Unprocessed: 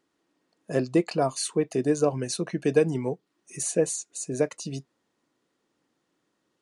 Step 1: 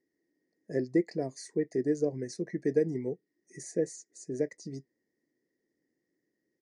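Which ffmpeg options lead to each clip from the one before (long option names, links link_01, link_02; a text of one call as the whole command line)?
ffmpeg -i in.wav -af "firequalizer=gain_entry='entry(120,0);entry(380,6);entry(730,-8);entry(1300,-23);entry(1900,9);entry(2800,-28);entry(5000,0);entry(8200,-9);entry(12000,-16)':delay=0.05:min_phase=1,volume=-8.5dB" out.wav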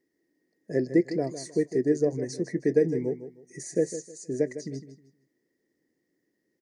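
ffmpeg -i in.wav -af "aecho=1:1:156|312|468:0.251|0.0678|0.0183,volume=4.5dB" out.wav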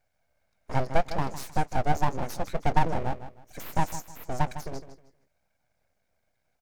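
ffmpeg -i in.wav -af "aeval=exprs='abs(val(0))':channel_layout=same,volume=2.5dB" out.wav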